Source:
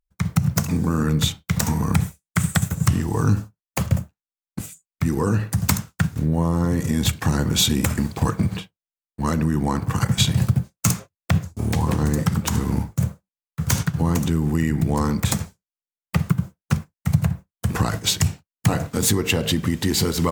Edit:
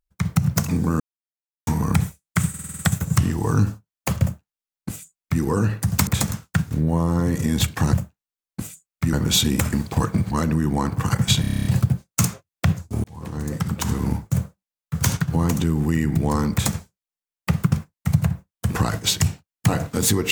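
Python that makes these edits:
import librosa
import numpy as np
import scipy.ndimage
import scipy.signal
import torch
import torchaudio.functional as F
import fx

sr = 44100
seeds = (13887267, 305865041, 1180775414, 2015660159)

y = fx.edit(x, sr, fx.silence(start_s=1.0, length_s=0.67),
    fx.stutter(start_s=2.49, slice_s=0.05, count=7),
    fx.duplicate(start_s=3.92, length_s=1.2, to_s=7.38),
    fx.cut(start_s=8.56, length_s=0.65),
    fx.stutter(start_s=10.31, slice_s=0.03, count=9),
    fx.fade_in_span(start_s=11.7, length_s=1.34, curve='qsin'),
    fx.duplicate(start_s=15.18, length_s=0.25, to_s=5.77),
    fx.cut(start_s=16.38, length_s=0.34), tone=tone)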